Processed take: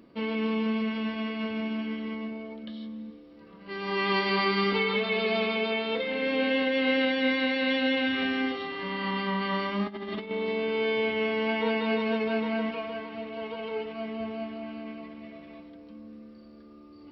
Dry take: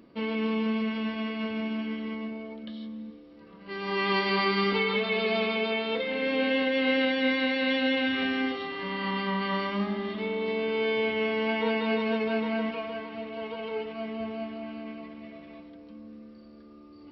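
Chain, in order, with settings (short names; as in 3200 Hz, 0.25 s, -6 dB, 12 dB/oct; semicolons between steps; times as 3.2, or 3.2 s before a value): 9.86–10.31 negative-ratio compressor -35 dBFS, ratio -0.5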